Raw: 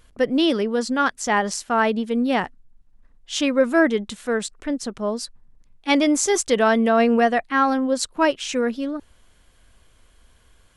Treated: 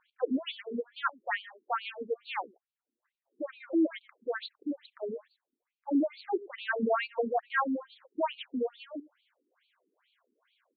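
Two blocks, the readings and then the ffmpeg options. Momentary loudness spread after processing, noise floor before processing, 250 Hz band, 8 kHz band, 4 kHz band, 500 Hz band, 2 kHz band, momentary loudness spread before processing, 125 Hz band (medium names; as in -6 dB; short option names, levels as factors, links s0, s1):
13 LU, -56 dBFS, -12.5 dB, under -40 dB, -15.0 dB, -13.0 dB, -12.0 dB, 10 LU, no reading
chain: -filter_complex "[0:a]asplit=2[s0][s1];[s1]adelay=105,volume=0.1,highshelf=f=4000:g=-2.36[s2];[s0][s2]amix=inputs=2:normalize=0,afftfilt=real='re*between(b*sr/1024,300*pow(3300/300,0.5+0.5*sin(2*PI*2.3*pts/sr))/1.41,300*pow(3300/300,0.5+0.5*sin(2*PI*2.3*pts/sr))*1.41)':imag='im*between(b*sr/1024,300*pow(3300/300,0.5+0.5*sin(2*PI*2.3*pts/sr))/1.41,300*pow(3300/300,0.5+0.5*sin(2*PI*2.3*pts/sr))*1.41)':win_size=1024:overlap=0.75,volume=0.531"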